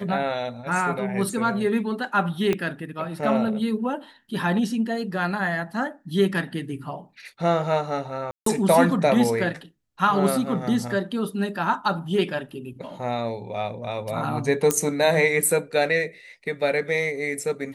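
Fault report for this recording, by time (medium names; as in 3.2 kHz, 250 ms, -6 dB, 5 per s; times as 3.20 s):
2.53 s: pop -11 dBFS
8.31–8.46 s: dropout 153 ms
14.71 s: pop -5 dBFS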